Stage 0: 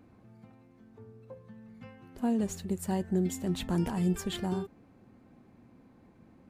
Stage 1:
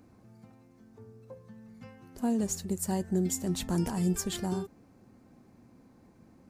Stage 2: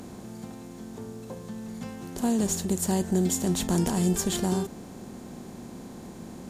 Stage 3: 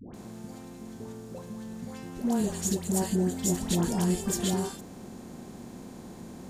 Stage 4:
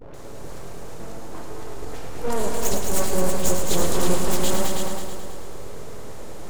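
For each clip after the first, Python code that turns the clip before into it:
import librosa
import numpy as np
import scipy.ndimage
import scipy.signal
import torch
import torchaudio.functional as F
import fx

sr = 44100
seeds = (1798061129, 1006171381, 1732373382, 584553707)

y1 = fx.high_shelf_res(x, sr, hz=4200.0, db=6.5, q=1.5)
y2 = fx.bin_compress(y1, sr, power=0.6)
y2 = y2 * 10.0 ** (2.5 / 20.0)
y3 = fx.dispersion(y2, sr, late='highs', ms=143.0, hz=840.0)
y3 = y3 * 10.0 ** (-2.0 / 20.0)
y4 = np.abs(y3)
y4 = fx.echo_heads(y4, sr, ms=108, heads='all three', feedback_pct=45, wet_db=-7.5)
y4 = y4 * 10.0 ** (6.0 / 20.0)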